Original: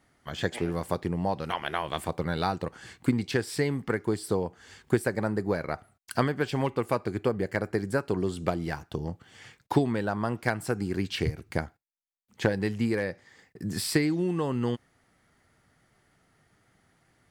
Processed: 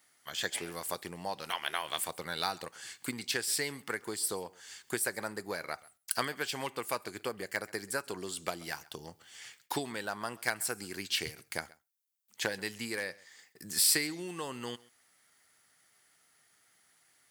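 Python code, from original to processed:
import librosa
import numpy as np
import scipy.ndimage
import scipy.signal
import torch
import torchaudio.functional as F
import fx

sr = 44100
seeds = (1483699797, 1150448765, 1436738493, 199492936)

y = fx.tilt_eq(x, sr, slope=4.5)
y = y + 10.0 ** (-23.0 / 20.0) * np.pad(y, (int(133 * sr / 1000.0), 0))[:len(y)]
y = F.gain(torch.from_numpy(y), -5.5).numpy()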